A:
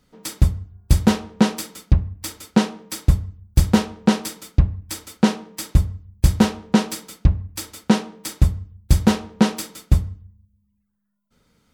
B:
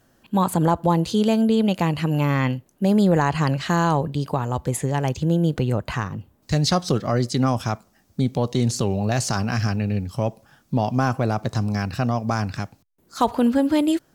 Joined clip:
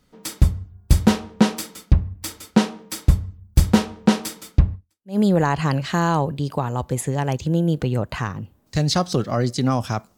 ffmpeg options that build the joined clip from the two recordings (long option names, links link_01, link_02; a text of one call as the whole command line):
ffmpeg -i cue0.wav -i cue1.wav -filter_complex "[0:a]apad=whole_dur=10.17,atrim=end=10.17,atrim=end=5.18,asetpts=PTS-STARTPTS[link_01];[1:a]atrim=start=2.5:end=7.93,asetpts=PTS-STARTPTS[link_02];[link_01][link_02]acrossfade=duration=0.44:curve1=exp:curve2=exp" out.wav